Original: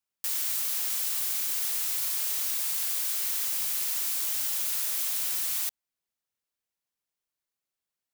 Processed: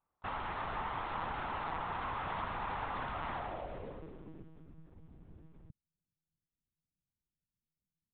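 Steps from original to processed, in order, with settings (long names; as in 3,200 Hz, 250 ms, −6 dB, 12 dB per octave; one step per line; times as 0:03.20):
low-pass filter sweep 1,000 Hz → 150 Hz, 0:03.28–0:04.73
one-pitch LPC vocoder at 8 kHz 160 Hz
level +9.5 dB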